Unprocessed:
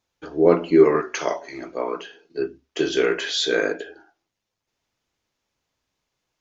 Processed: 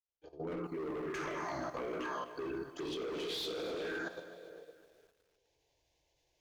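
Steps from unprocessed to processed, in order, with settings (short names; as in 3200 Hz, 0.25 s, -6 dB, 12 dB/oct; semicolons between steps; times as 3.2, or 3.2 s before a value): opening faded in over 2.13 s; plate-style reverb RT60 1.8 s, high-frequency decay 0.75×, DRR 3 dB; in parallel at 0 dB: limiter -15 dBFS, peak gain reduction 7.5 dB; on the sum: envelope phaser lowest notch 220 Hz, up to 1700 Hz, full sweep at -14 dBFS; reverse; compressor 10:1, threshold -23 dBFS, peak gain reduction 12 dB; reverse; hard clip -28.5 dBFS, distortion -8 dB; high shelf 5100 Hz -7.5 dB; level quantiser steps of 13 dB; lo-fi delay 0.255 s, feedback 55%, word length 10-bit, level -15 dB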